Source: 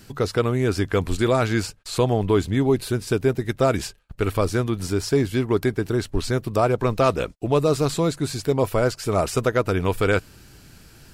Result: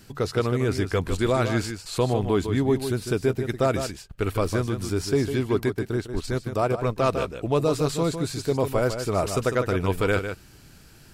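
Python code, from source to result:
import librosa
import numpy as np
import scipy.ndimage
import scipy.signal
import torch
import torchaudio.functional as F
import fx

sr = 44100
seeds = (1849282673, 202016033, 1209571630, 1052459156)

y = x + 10.0 ** (-8.5 / 20.0) * np.pad(x, (int(152 * sr / 1000.0), 0))[:len(x)]
y = fx.transient(y, sr, attack_db=-3, sustain_db=-7, at=(5.7, 7.11), fade=0.02)
y = y * 10.0 ** (-3.0 / 20.0)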